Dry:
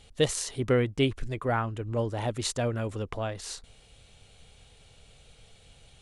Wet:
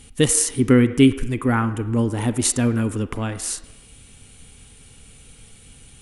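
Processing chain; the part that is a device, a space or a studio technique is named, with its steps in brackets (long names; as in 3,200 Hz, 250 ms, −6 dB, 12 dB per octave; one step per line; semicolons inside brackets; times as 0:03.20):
filtered reverb send (on a send: high-pass filter 330 Hz 24 dB per octave + low-pass filter 3,300 Hz 12 dB per octave + convolution reverb RT60 1.1 s, pre-delay 33 ms, DRR 11.5 dB)
on the sum: graphic EQ with 15 bands 250 Hz +9 dB, 630 Hz −12 dB, 4,000 Hz −6 dB, 10,000 Hz +12 dB
level +8 dB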